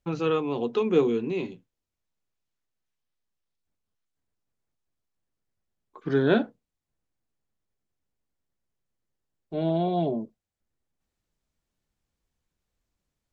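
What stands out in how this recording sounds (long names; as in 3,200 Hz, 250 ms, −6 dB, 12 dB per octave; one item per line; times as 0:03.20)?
background noise floor −85 dBFS
spectral slope −6.0 dB per octave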